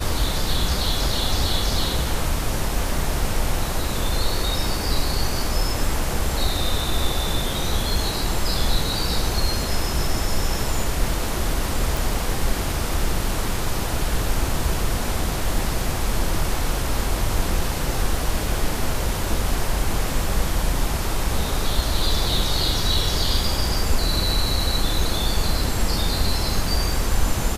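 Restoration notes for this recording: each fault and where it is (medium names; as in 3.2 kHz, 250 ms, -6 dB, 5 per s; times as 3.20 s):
11.97 s: pop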